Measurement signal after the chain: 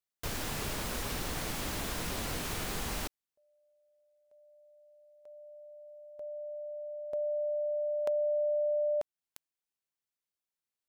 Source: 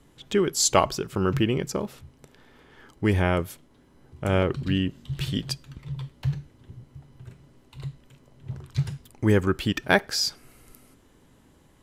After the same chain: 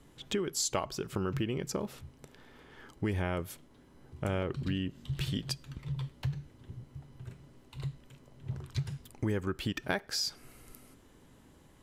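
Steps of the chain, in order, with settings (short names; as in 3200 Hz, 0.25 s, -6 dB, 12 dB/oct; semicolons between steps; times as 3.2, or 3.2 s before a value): compressor 4:1, threshold -29 dBFS; gain -1.5 dB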